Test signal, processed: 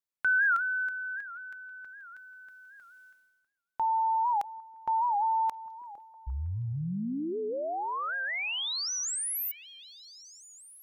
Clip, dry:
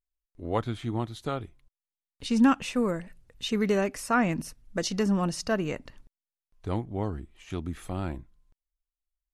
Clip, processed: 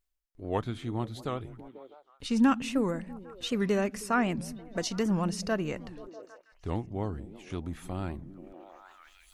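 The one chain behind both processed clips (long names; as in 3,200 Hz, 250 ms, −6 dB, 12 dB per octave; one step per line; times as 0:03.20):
echo through a band-pass that steps 161 ms, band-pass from 160 Hz, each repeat 0.7 octaves, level −11 dB
reversed playback
upward compression, threshold −36 dBFS
reversed playback
wow of a warped record 78 rpm, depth 160 cents
level −2.5 dB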